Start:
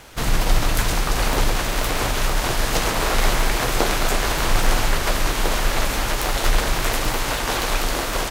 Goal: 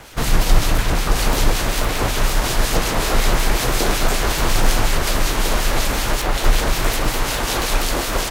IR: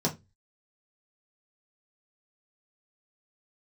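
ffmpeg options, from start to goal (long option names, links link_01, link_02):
-filter_complex "[0:a]acrossover=split=480|3600[link_01][link_02][link_03];[link_02]asoftclip=type=tanh:threshold=-23dB[link_04];[link_03]alimiter=limit=-15dB:level=0:latency=1:release=426[link_05];[link_01][link_04][link_05]amix=inputs=3:normalize=0,acrossover=split=2000[link_06][link_07];[link_06]aeval=exprs='val(0)*(1-0.5/2+0.5/2*cos(2*PI*5.4*n/s))':channel_layout=same[link_08];[link_07]aeval=exprs='val(0)*(1-0.5/2-0.5/2*cos(2*PI*5.4*n/s))':channel_layout=same[link_09];[link_08][link_09]amix=inputs=2:normalize=0,volume=5.5dB"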